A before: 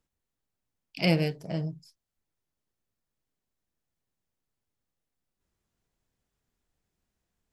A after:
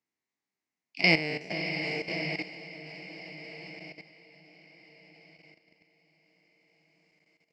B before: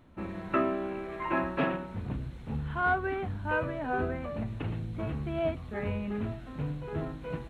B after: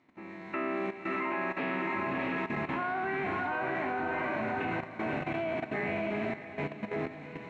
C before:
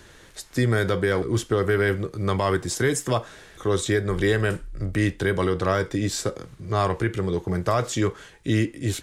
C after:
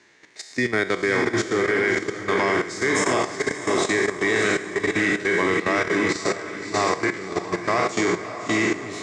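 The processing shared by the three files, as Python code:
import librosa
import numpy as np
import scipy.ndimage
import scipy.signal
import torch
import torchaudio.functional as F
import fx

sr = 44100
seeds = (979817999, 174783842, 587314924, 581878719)

y = fx.spec_trails(x, sr, decay_s=0.92)
y = fx.cabinet(y, sr, low_hz=260.0, low_slope=12, high_hz=6900.0, hz=(530.0, 1400.0, 2100.0, 3300.0), db=(-8, -6, 9, -6))
y = fx.echo_diffused(y, sr, ms=617, feedback_pct=56, wet_db=-3.5)
y = fx.level_steps(y, sr, step_db=12)
y = F.gain(torch.from_numpy(y), 3.5).numpy()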